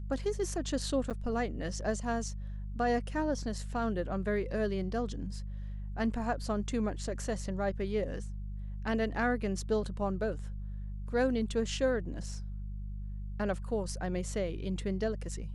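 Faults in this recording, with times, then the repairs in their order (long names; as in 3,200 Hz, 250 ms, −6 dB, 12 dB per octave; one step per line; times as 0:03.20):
mains hum 50 Hz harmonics 4 −39 dBFS
0:01.10–0:01.11: drop-out 7.6 ms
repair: hum removal 50 Hz, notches 4
repair the gap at 0:01.10, 7.6 ms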